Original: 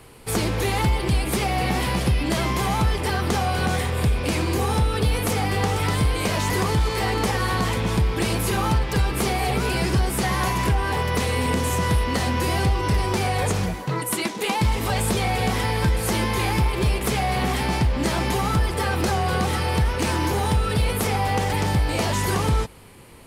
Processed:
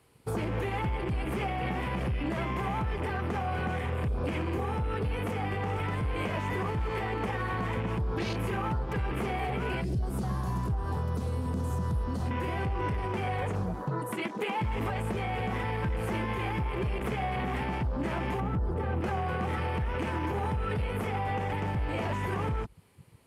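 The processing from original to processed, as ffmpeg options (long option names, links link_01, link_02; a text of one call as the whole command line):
ffmpeg -i in.wav -filter_complex "[0:a]asettb=1/sr,asplit=3[link_01][link_02][link_03];[link_01]atrim=end=9.814[link_04];[link_02]atrim=start=9.81:end=12.31,asetpts=PTS-STARTPTS,afade=type=in:duration=0.004:curve=qsin,afade=type=out:start_time=2.496:duration=0.004:curve=qsin,acrossover=split=230|3000[link_05][link_06][link_07];[link_06]acompressor=threshold=-32dB:ratio=5:attack=3.2:release=140:knee=2.83:detection=peak[link_08];[link_05][link_08][link_07]amix=inputs=3:normalize=0[link_09];[link_03]atrim=start=12.306[link_10];[link_04][link_09]acrossfade=duration=0.004:curve1=hsin:curve2=qsin[link_11];[link_11][link_10]acrossfade=duration=0.004:curve1=qsin:curve2=hsin,asettb=1/sr,asplit=3[link_12][link_13][link_14];[link_12]atrim=end=18.404[link_15];[link_13]atrim=start=18.4:end=19.01,asetpts=PTS-STARTPTS,afade=type=in:duration=0.004:curve=qsin,afade=type=out:start_time=0.606:duration=0.004:curve=qsin,tiltshelf=frequency=970:gain=7[link_16];[link_14]atrim=start=19.006[link_17];[link_15][link_16]acrossfade=duration=0.004:curve1=hsin:curve2=qsin[link_18];[link_18][link_17]acrossfade=duration=0.004:curve1=qsin:curve2=hsin,highpass=48,afwtdn=0.0282,alimiter=limit=-23dB:level=0:latency=1:release=222" out.wav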